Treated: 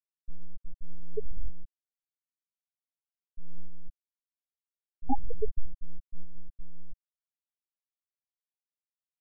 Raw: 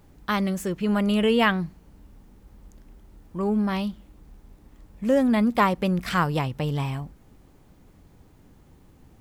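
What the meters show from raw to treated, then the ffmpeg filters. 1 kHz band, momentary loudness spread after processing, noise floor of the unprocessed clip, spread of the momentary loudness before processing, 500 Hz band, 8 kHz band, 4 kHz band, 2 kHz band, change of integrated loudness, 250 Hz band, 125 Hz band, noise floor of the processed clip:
−17.0 dB, 22 LU, −55 dBFS, 12 LU, −17.0 dB, can't be measured, below −40 dB, below −40 dB, −15.5 dB, −22.5 dB, −18.0 dB, below −85 dBFS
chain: -af "aeval=exprs='abs(val(0))':channel_layout=same,afftfilt=real='re*gte(hypot(re,im),0.631)':imag='im*gte(hypot(re,im),0.631)':win_size=1024:overlap=0.75,volume=2.5dB"

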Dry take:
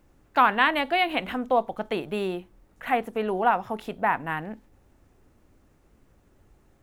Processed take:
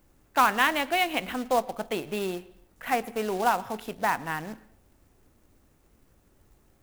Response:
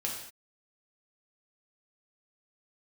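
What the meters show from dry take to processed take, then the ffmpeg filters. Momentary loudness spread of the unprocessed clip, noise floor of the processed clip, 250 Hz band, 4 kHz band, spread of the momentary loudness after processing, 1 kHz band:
13 LU, −64 dBFS, −2.5 dB, −0.5 dB, 13 LU, −2.0 dB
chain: -filter_complex "[0:a]crystalizer=i=1:c=0,acrusher=bits=3:mode=log:mix=0:aa=0.000001,asplit=2[link_01][link_02];[1:a]atrim=start_sample=2205,lowpass=4300,adelay=110[link_03];[link_02][link_03]afir=irnorm=-1:irlink=0,volume=-23.5dB[link_04];[link_01][link_04]amix=inputs=2:normalize=0,volume=-2.5dB"

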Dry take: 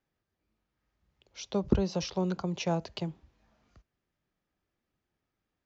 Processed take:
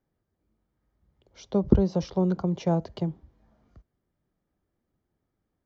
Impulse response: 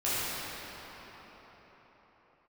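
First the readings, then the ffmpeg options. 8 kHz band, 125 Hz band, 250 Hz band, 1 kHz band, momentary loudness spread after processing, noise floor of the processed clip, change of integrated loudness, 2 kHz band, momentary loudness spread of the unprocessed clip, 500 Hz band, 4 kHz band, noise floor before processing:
can't be measured, +6.5 dB, +6.5 dB, +2.5 dB, 10 LU, −81 dBFS, +5.5 dB, −5.0 dB, 11 LU, +5.0 dB, −6.0 dB, −85 dBFS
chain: -af "tiltshelf=frequency=1200:gain=7,bandreject=frequency=2600:width=8.5"

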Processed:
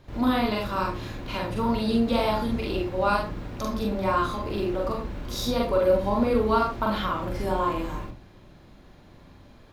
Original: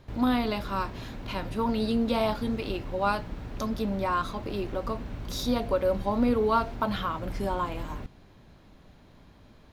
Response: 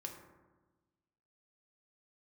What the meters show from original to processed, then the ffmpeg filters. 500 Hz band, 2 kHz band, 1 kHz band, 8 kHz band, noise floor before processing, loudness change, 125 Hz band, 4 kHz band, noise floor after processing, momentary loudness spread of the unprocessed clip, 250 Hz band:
+4.0 dB, +3.5 dB, +3.0 dB, +3.0 dB, −55 dBFS, +3.0 dB, +3.0 dB, +3.0 dB, −51 dBFS, 10 LU, +2.0 dB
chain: -filter_complex "[0:a]bandreject=frequency=60:width_type=h:width=6,bandreject=frequency=120:width_type=h:width=6,bandreject=frequency=180:width_type=h:width=6,asplit=2[link_01][link_02];[1:a]atrim=start_sample=2205,atrim=end_sample=3969,adelay=43[link_03];[link_02][link_03]afir=irnorm=-1:irlink=0,volume=4.5dB[link_04];[link_01][link_04]amix=inputs=2:normalize=0"

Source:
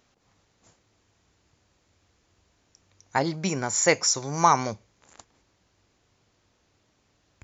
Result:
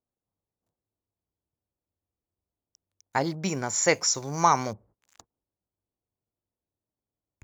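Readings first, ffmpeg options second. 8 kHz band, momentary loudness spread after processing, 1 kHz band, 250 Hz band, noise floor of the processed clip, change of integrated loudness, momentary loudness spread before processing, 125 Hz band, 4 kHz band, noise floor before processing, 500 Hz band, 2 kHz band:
can't be measured, 10 LU, −1.5 dB, −1.5 dB, below −85 dBFS, −1.5 dB, 10 LU, −1.5 dB, −2.0 dB, −69 dBFS, −1.5 dB, −2.0 dB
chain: -filter_complex "[0:a]acrossover=split=1100[link_01][link_02];[link_01]agate=range=-21dB:threshold=-55dB:ratio=16:detection=peak[link_03];[link_02]aeval=exprs='sgn(val(0))*max(abs(val(0))-0.00224,0)':channel_layout=same[link_04];[link_03][link_04]amix=inputs=2:normalize=0,volume=-1.5dB"

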